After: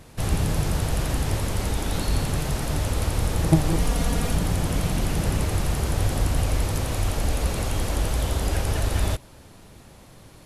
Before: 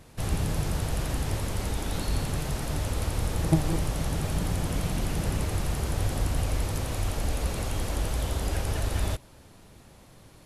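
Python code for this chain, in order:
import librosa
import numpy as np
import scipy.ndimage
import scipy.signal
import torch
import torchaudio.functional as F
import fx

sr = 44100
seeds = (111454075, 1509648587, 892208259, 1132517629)

y = fx.comb(x, sr, ms=4.2, depth=0.68, at=(3.79, 4.35))
y = y * librosa.db_to_amplitude(4.5)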